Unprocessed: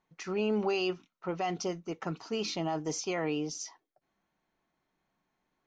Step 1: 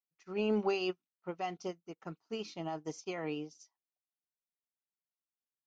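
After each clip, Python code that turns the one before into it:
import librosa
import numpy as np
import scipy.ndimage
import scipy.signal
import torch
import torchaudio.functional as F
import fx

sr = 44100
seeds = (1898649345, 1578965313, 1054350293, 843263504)

y = scipy.signal.sosfilt(scipy.signal.butter(2, 41.0, 'highpass', fs=sr, output='sos'), x)
y = fx.upward_expand(y, sr, threshold_db=-49.0, expansion=2.5)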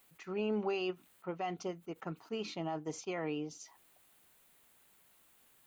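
y = fx.peak_eq(x, sr, hz=5400.0, db=-10.5, octaves=0.65)
y = fx.env_flatten(y, sr, amount_pct=50)
y = y * 10.0 ** (-4.0 / 20.0)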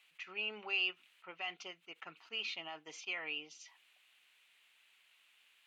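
y = fx.bandpass_q(x, sr, hz=2700.0, q=2.7)
y = y * 10.0 ** (10.0 / 20.0)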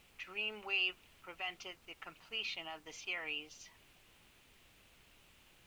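y = fx.dmg_noise_colour(x, sr, seeds[0], colour='pink', level_db=-67.0)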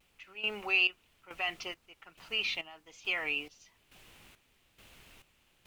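y = fx.vibrato(x, sr, rate_hz=1.1, depth_cents=51.0)
y = fx.step_gate(y, sr, bpm=138, pattern='....xxxx', floor_db=-12.0, edge_ms=4.5)
y = y * 10.0 ** (7.5 / 20.0)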